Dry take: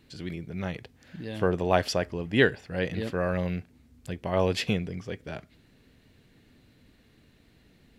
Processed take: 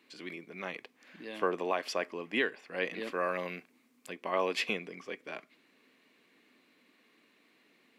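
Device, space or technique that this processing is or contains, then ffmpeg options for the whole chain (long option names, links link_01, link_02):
laptop speaker: -filter_complex "[0:a]highpass=frequency=250:width=0.5412,highpass=frequency=250:width=1.3066,equalizer=frequency=1100:width_type=o:width=0.29:gain=10,equalizer=frequency=2300:width_type=o:width=0.6:gain=8,alimiter=limit=-12.5dB:level=0:latency=1:release=319,asettb=1/sr,asplit=3[link_01][link_02][link_03];[link_01]atrim=end=3.114[link_04];[link_02]atrim=start=3.11:end=4.1,asetpts=PTS-STARTPTS,afade=type=in:duration=0.004:curve=qsin,afade=type=out:start_time=0.986:duration=0.004:curve=qsin,highshelf=frequency=6500:gain=6[link_05];[link_03]atrim=start=4.096[link_06];[link_04][link_05]acrossfade=duration=0.004:curve1=hsin:curve2=qsin[link_07];[link_07][link_06]acrossfade=duration=0.004:curve1=qsin:curve2=hsin,volume=-5dB"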